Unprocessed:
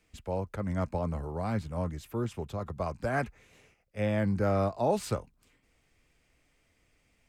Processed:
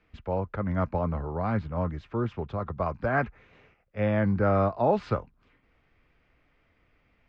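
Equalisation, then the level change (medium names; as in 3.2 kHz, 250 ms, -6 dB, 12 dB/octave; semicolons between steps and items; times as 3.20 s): Gaussian low-pass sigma 1.7 samples; distance through air 150 m; peaking EQ 1.3 kHz +5 dB 1 oct; +3.5 dB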